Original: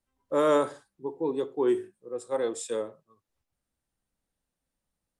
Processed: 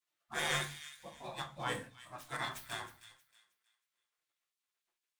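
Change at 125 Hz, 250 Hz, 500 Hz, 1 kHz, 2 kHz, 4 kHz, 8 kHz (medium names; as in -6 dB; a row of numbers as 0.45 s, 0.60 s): +0.5 dB, -19.5 dB, -21.0 dB, -7.5 dB, +4.5 dB, +5.5 dB, -3.0 dB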